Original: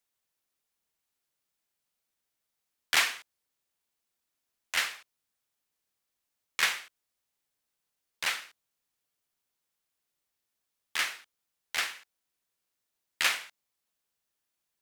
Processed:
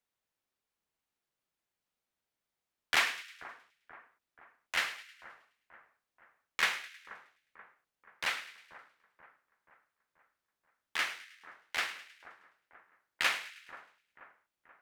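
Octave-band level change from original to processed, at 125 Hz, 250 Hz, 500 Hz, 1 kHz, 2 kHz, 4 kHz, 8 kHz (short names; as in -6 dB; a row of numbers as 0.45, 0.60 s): n/a, 0.0 dB, 0.0 dB, -0.5 dB, -2.0 dB, -4.5 dB, -8.0 dB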